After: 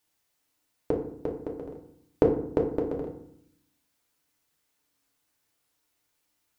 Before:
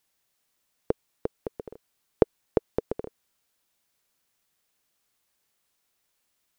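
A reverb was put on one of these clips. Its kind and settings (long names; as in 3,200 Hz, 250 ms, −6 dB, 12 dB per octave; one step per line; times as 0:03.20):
feedback delay network reverb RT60 0.67 s, low-frequency decay 1.5×, high-frequency decay 0.55×, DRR −0.5 dB
level −3 dB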